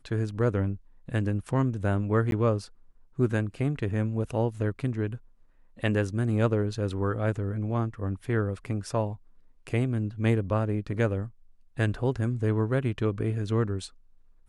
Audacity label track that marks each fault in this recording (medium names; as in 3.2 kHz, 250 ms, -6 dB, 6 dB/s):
2.310000	2.320000	dropout 12 ms